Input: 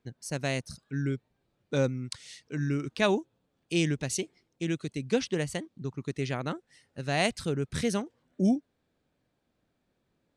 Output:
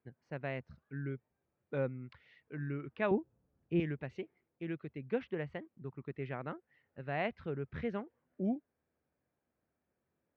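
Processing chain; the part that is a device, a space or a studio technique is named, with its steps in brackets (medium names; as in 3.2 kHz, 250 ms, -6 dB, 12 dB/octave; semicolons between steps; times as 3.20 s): 3.11–3.80 s: RIAA curve playback; bass cabinet (cabinet simulation 71–2300 Hz, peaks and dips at 74 Hz +5 dB, 110 Hz -5 dB, 180 Hz -4 dB, 280 Hz -4 dB); trim -7 dB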